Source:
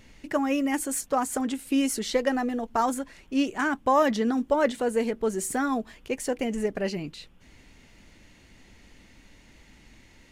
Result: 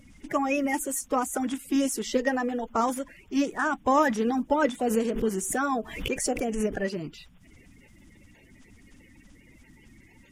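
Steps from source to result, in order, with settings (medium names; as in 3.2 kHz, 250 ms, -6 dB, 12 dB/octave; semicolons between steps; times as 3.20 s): coarse spectral quantiser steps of 30 dB; peaking EQ 4.2 kHz -9.5 dB 0.22 oct; 4.82–6.82 s: swell ahead of each attack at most 72 dB/s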